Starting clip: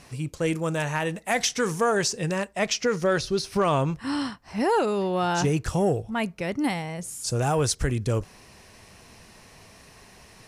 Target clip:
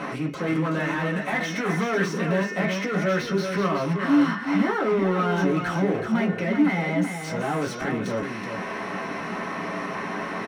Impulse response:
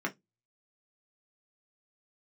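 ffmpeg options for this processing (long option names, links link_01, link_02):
-filter_complex "[0:a]highshelf=frequency=8200:gain=-5.5,bandreject=frequency=360.7:width_type=h:width=4,bandreject=frequency=721.4:width_type=h:width=4,bandreject=frequency=1082.1:width_type=h:width=4,bandreject=frequency=1442.8:width_type=h:width=4,bandreject=frequency=1803.5:width_type=h:width=4,bandreject=frequency=2164.2:width_type=h:width=4,bandreject=frequency=2524.9:width_type=h:width=4,bandreject=frequency=2885.6:width_type=h:width=4,bandreject=frequency=3246.3:width_type=h:width=4,bandreject=frequency=3607:width_type=h:width=4,bandreject=frequency=3967.7:width_type=h:width=4,bandreject=frequency=4328.4:width_type=h:width=4,bandreject=frequency=4689.1:width_type=h:width=4,bandreject=frequency=5049.8:width_type=h:width=4,bandreject=frequency=5410.5:width_type=h:width=4,bandreject=frequency=5771.2:width_type=h:width=4,bandreject=frequency=6131.9:width_type=h:width=4,bandreject=frequency=6492.6:width_type=h:width=4,acrossover=split=1400[link_01][link_02];[link_01]acompressor=mode=upward:threshold=-34dB:ratio=2.5[link_03];[link_03][link_02]amix=inputs=2:normalize=0,alimiter=limit=-22dB:level=0:latency=1:release=66,asoftclip=type=hard:threshold=-28.5dB,asplit=2[link_04][link_05];[link_05]highpass=frequency=720:poles=1,volume=20dB,asoftclip=type=tanh:threshold=-28.5dB[link_06];[link_04][link_06]amix=inputs=2:normalize=0,lowpass=frequency=3900:poles=1,volume=-6dB,aecho=1:1:376:0.473[link_07];[1:a]atrim=start_sample=2205[link_08];[link_07][link_08]afir=irnorm=-1:irlink=0,volume=1dB"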